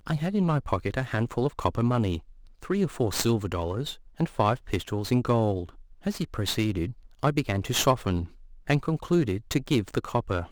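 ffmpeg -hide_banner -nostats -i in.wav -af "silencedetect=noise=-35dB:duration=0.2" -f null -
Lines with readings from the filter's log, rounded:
silence_start: 2.19
silence_end: 2.63 | silence_duration: 0.44
silence_start: 3.93
silence_end: 4.20 | silence_duration: 0.26
silence_start: 5.69
silence_end: 6.06 | silence_duration: 0.37
silence_start: 6.92
silence_end: 7.23 | silence_duration: 0.32
silence_start: 8.25
silence_end: 8.67 | silence_duration: 0.42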